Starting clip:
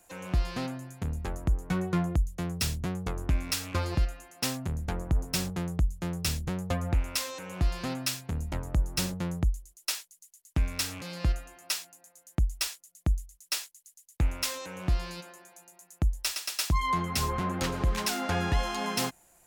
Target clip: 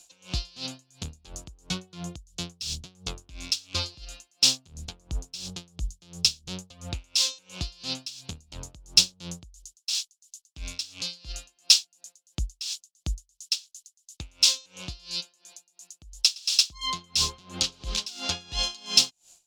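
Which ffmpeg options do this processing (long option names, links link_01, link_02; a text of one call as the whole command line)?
ffmpeg -i in.wav -filter_complex "[0:a]acrossover=split=6200[link_01][link_02];[link_01]aexciter=amount=15.3:drive=4.2:freq=2900[link_03];[link_03][link_02]amix=inputs=2:normalize=0,aeval=exprs='val(0)*pow(10,-23*(0.5-0.5*cos(2*PI*2.9*n/s))/20)':channel_layout=same,volume=-3.5dB" out.wav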